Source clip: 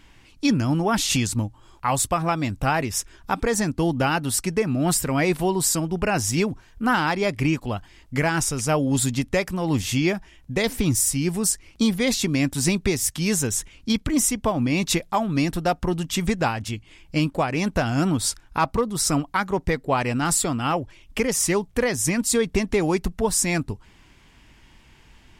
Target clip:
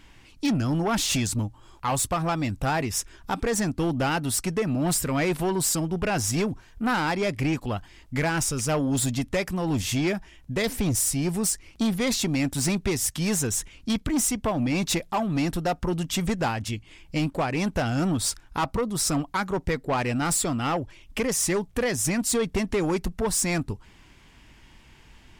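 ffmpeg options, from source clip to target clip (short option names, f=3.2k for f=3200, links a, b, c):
-af "asoftclip=type=tanh:threshold=-19dB"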